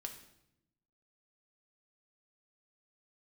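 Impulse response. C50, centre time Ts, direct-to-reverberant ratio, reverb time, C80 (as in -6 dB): 9.0 dB, 16 ms, 3.5 dB, 0.85 s, 11.5 dB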